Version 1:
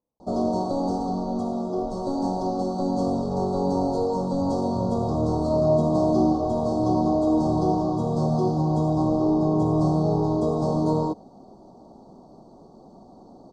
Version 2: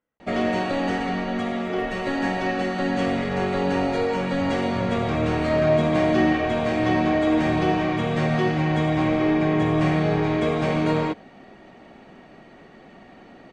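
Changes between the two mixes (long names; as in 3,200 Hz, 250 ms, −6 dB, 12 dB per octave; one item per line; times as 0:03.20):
second sound +8.0 dB
master: remove elliptic band-stop filter 1,000–4,700 Hz, stop band 70 dB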